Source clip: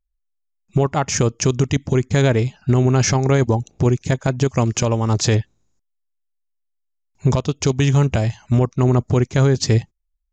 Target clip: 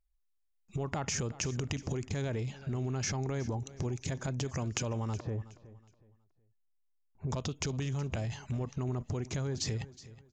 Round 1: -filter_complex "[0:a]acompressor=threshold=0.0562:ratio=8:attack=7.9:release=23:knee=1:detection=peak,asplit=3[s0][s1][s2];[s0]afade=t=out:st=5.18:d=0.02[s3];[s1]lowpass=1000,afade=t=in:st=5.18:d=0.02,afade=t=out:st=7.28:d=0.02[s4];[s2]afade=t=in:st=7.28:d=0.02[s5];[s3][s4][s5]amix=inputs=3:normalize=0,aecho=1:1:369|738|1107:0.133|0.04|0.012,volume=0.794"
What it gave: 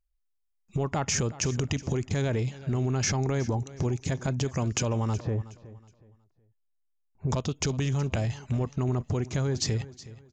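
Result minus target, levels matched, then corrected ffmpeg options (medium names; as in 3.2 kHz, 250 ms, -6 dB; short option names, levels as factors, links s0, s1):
compression: peak gain reduction -7 dB
-filter_complex "[0:a]acompressor=threshold=0.0224:ratio=8:attack=7.9:release=23:knee=1:detection=peak,asplit=3[s0][s1][s2];[s0]afade=t=out:st=5.18:d=0.02[s3];[s1]lowpass=1000,afade=t=in:st=5.18:d=0.02,afade=t=out:st=7.28:d=0.02[s4];[s2]afade=t=in:st=7.28:d=0.02[s5];[s3][s4][s5]amix=inputs=3:normalize=0,aecho=1:1:369|738|1107:0.133|0.04|0.012,volume=0.794"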